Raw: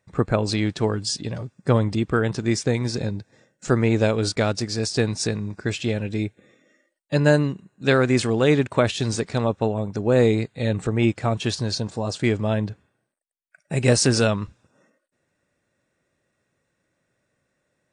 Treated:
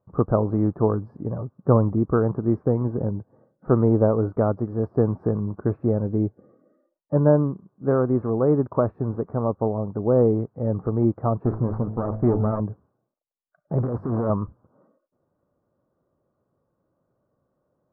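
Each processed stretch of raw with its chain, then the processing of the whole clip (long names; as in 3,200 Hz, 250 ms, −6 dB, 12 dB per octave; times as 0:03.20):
0:11.45–0:12.60: lower of the sound and its delayed copy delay 0.44 ms + hum removal 54.32 Hz, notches 18 + leveller curve on the samples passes 1
0:13.78–0:14.30: compressor whose output falls as the input rises −24 dBFS + mains-hum notches 50/100/150/200 Hz + highs frequency-modulated by the lows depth 0.59 ms
whole clip: elliptic low-pass filter 1,200 Hz, stop band 60 dB; speech leveller 2 s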